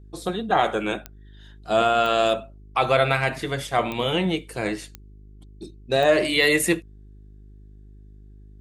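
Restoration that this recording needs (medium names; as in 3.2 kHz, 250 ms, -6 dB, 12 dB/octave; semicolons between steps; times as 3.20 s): de-click; de-hum 51.2 Hz, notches 8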